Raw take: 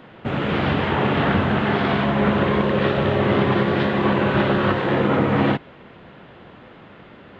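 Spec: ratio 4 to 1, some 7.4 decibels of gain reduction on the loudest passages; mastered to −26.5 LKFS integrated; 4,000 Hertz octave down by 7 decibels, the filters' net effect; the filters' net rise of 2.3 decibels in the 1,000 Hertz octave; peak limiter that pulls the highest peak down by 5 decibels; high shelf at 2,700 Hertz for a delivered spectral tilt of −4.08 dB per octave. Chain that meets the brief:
parametric band 1,000 Hz +4 dB
high-shelf EQ 2,700 Hz −6 dB
parametric band 4,000 Hz −5.5 dB
downward compressor 4 to 1, threshold −23 dBFS
level +1 dB
brickwall limiter −17 dBFS

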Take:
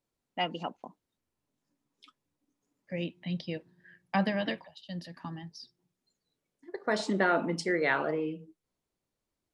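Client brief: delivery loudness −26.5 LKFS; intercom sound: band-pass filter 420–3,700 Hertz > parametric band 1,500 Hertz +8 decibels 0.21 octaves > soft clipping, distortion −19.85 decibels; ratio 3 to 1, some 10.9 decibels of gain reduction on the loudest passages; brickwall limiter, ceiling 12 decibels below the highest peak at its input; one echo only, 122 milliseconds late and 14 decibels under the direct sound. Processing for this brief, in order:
downward compressor 3 to 1, threshold −37 dBFS
brickwall limiter −32.5 dBFS
band-pass filter 420–3,700 Hz
parametric band 1,500 Hz +8 dB 0.21 octaves
single-tap delay 122 ms −14 dB
soft clipping −34.5 dBFS
level +21 dB

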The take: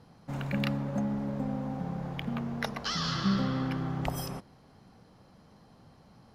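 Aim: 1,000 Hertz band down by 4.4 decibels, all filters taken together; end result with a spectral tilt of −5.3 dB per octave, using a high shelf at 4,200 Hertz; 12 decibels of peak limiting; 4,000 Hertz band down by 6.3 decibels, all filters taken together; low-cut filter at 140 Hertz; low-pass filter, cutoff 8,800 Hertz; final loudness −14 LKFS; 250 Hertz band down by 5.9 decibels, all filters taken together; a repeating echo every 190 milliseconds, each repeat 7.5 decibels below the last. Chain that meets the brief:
high-pass filter 140 Hz
low-pass filter 8,800 Hz
parametric band 250 Hz −6.5 dB
parametric band 1,000 Hz −5 dB
parametric band 4,000 Hz −4.5 dB
high-shelf EQ 4,200 Hz −5.5 dB
brickwall limiter −30.5 dBFS
repeating echo 190 ms, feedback 42%, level −7.5 dB
level +26 dB

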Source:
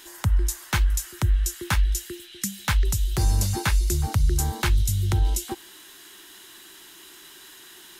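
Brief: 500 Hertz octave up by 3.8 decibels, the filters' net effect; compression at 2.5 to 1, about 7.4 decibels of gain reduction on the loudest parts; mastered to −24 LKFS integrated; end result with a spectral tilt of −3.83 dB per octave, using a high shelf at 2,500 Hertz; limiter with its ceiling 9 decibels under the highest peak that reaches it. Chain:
parametric band 500 Hz +6 dB
high-shelf EQ 2,500 Hz +3 dB
downward compressor 2.5 to 1, threshold −27 dBFS
level +9 dB
brickwall limiter −11.5 dBFS

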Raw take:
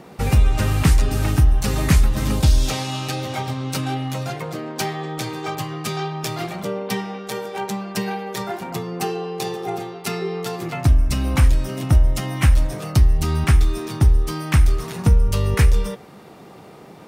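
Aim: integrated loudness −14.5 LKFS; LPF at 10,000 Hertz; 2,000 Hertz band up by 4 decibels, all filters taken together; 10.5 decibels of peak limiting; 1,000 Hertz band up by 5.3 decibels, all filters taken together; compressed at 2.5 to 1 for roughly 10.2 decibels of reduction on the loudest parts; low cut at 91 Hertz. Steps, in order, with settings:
high-pass filter 91 Hz
low-pass filter 10,000 Hz
parametric band 1,000 Hz +6.5 dB
parametric band 2,000 Hz +3 dB
downward compressor 2.5 to 1, threshold −28 dBFS
level +16.5 dB
brickwall limiter −4 dBFS

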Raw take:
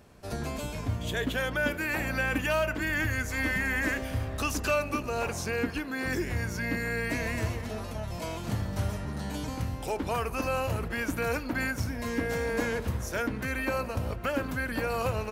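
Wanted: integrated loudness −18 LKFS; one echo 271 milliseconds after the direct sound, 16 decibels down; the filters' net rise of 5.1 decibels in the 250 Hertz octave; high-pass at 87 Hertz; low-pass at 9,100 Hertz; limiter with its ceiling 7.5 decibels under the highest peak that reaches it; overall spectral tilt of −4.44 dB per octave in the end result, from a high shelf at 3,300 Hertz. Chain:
high-pass filter 87 Hz
low-pass filter 9,100 Hz
parametric band 250 Hz +6 dB
high-shelf EQ 3,300 Hz +8 dB
brickwall limiter −19.5 dBFS
single-tap delay 271 ms −16 dB
level +12 dB

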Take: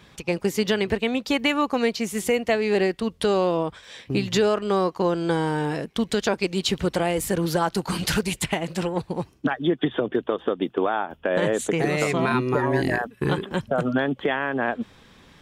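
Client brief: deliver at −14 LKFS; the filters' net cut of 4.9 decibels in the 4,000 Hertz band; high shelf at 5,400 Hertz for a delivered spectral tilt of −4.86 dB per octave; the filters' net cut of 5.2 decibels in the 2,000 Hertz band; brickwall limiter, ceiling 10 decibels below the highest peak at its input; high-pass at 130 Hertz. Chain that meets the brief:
high-pass filter 130 Hz
parametric band 2,000 Hz −6 dB
parametric band 4,000 Hz −5.5 dB
high-shelf EQ 5,400 Hz +3.5 dB
level +16.5 dB
brickwall limiter −4 dBFS

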